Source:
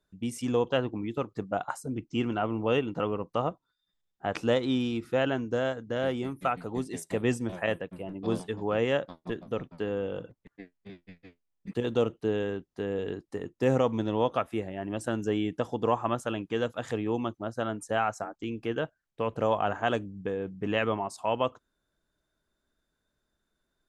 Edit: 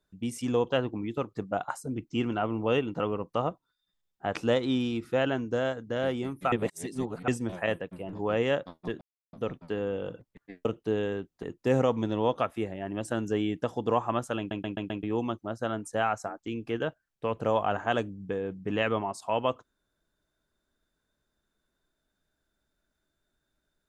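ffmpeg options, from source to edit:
-filter_complex "[0:a]asplit=12[a][b][c][d][e][f][g][h][i][j][k][l];[a]atrim=end=6.522[m];[b]atrim=start=6.518:end=7.282,asetpts=PTS-STARTPTS,areverse[n];[c]atrim=start=7.278:end=8.132[o];[d]atrim=start=8.548:end=9.43,asetpts=PTS-STARTPTS,afade=t=out:st=0.878:d=0.004:c=hsin,apad=pad_dur=0.32[p];[e]atrim=start=9.43:end=10.752,asetpts=PTS-STARTPTS,afade=t=in:d=0.004:c=hsin[q];[f]atrim=start=12.018:end=12.802[r];[g]atrim=start=13.388:end=16.472[s];[h]atrim=start=16.338:end=16.472[t];[i]atrim=start=16.338:end=16.472[u];[j]atrim=start=16.338:end=16.472[v];[k]atrim=start=16.338:end=16.472[w];[l]atrim=start=16.988[x];[m][n]acrossfade=d=0.004:c1=hsin:c2=hsin[y];[y][o]acrossfade=d=0.004:c1=hsin:c2=hsin[z];[p][q]concat=n=2:v=0:a=1[aa];[z][aa]acrossfade=d=0.004:c1=hsin:c2=hsin[ab];[ab][r]acrossfade=d=0.004:c1=hsin:c2=hsin[ac];[ac][s]acrossfade=d=0.004:c1=hsin:c2=hsin[ad];[ad][t]acrossfade=d=0.004:c1=hsin:c2=hsin[ae];[ae][u]acrossfade=d=0.004:c1=hsin:c2=hsin[af];[af][v]acrossfade=d=0.004:c1=hsin:c2=hsin[ag];[ag][w]acrossfade=d=0.004:c1=hsin:c2=hsin[ah];[ah][x]acrossfade=d=0.004:c1=hsin:c2=hsin"

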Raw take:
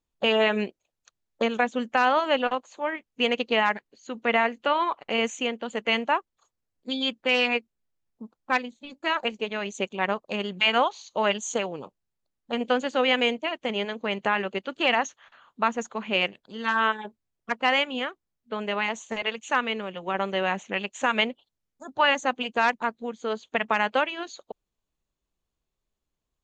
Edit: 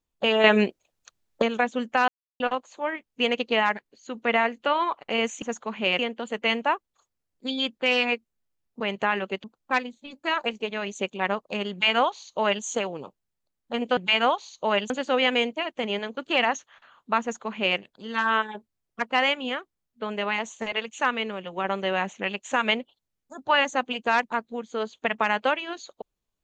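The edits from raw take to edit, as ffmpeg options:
-filter_complex "[0:a]asplit=12[a][b][c][d][e][f][g][h][i][j][k][l];[a]atrim=end=0.442[m];[b]atrim=start=0.438:end=1.422,asetpts=PTS-STARTPTS,volume=6.5dB[n];[c]atrim=start=1.418:end=2.08,asetpts=PTS-STARTPTS,afade=t=out:st=0.658:d=0.004:c=hsin[o];[d]atrim=start=2.08:end=2.4,asetpts=PTS-STARTPTS,volume=0[p];[e]atrim=start=2.4:end=5.422,asetpts=PTS-STARTPTS,afade=t=in:d=0.004:c=hsin[q];[f]atrim=start=15.708:end=16.282[r];[g]atrim=start=5.418:end=8.232[s];[h]atrim=start=14.028:end=14.672[t];[i]atrim=start=8.228:end=12.762[u];[j]atrim=start=10.498:end=11.432[v];[k]atrim=start=12.758:end=14.032[w];[l]atrim=start=14.668[x];[m][n]acrossfade=d=0.004:c1=hsin:c2=hsin[y];[o][p][q]concat=n=3:v=0:a=1[z];[y][z]acrossfade=d=0.004:c1=hsin:c2=hsin[aa];[aa][r]acrossfade=d=0.004:c1=hsin:c2=hsin[ab];[ab][s]acrossfade=d=0.004:c1=hsin:c2=hsin[ac];[ac][t]acrossfade=d=0.004:c1=hsin:c2=hsin[ad];[ad][u]acrossfade=d=0.004:c1=hsin:c2=hsin[ae];[ae][v]acrossfade=d=0.004:c1=hsin:c2=hsin[af];[af][w]acrossfade=d=0.004:c1=hsin:c2=hsin[ag];[ag][x]acrossfade=d=0.004:c1=hsin:c2=hsin"

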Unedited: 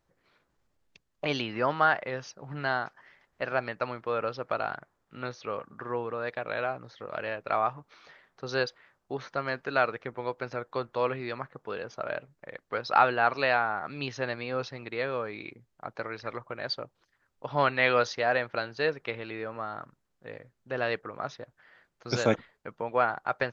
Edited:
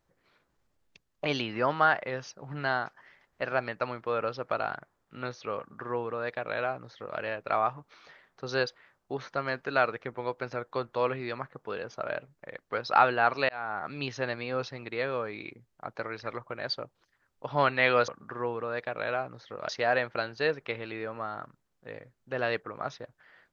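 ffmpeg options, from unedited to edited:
-filter_complex "[0:a]asplit=4[a][b][c][d];[a]atrim=end=13.49,asetpts=PTS-STARTPTS,afade=t=out:st=13.486:d=0.004:c=hsin[e];[b]atrim=start=13.49:end=18.082,asetpts=PTS-STARTPTS,afade=t=in:d=0.33[f];[c]atrim=start=5.578:end=7.192[g];[d]atrim=start=18.078[h];[e][f]concat=n=2:v=0:a=1[i];[i][g]acrossfade=d=0.004:c1=hsin:c2=hsin[j];[j][h]acrossfade=d=0.004:c1=hsin:c2=hsin"

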